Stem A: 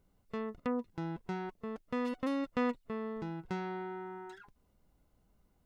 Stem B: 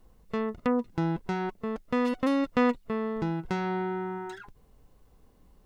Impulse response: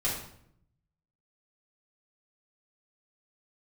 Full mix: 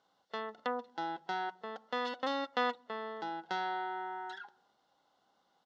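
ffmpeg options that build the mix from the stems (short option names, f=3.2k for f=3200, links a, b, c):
-filter_complex "[0:a]highshelf=f=2.5k:g=10,volume=0.5dB[a];[1:a]acompressor=threshold=-30dB:ratio=6,volume=-1,adelay=0.8,volume=-12.5dB,asplit=2[b][c];[c]volume=-15.5dB[d];[2:a]atrim=start_sample=2205[e];[d][e]afir=irnorm=-1:irlink=0[f];[a][b][f]amix=inputs=3:normalize=0,highpass=420,equalizer=f=420:t=q:w=4:g=-5,equalizer=f=810:t=q:w=4:g=9,equalizer=f=1.4k:t=q:w=4:g=6,equalizer=f=2.4k:t=q:w=4:g=-9,equalizer=f=3.5k:t=q:w=4:g=7,lowpass=f=5.4k:w=0.5412,lowpass=f=5.4k:w=1.3066"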